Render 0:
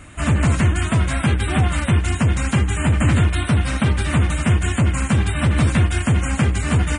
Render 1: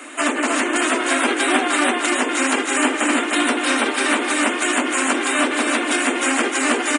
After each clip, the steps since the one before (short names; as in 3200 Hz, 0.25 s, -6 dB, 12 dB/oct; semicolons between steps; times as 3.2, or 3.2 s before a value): limiter -14.5 dBFS, peak gain reduction 7.5 dB; steep high-pass 250 Hz 96 dB/oct; feedback echo 0.304 s, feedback 47%, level -4.5 dB; gain +9 dB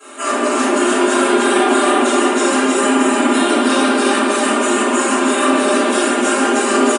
bell 2100 Hz -11 dB 0.96 oct; comb 5 ms; reverb RT60 2.1 s, pre-delay 3 ms, DRR -18.5 dB; gain -15 dB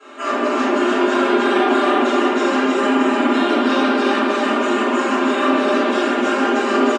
Bessel low-pass 3900 Hz, order 6; gain -2 dB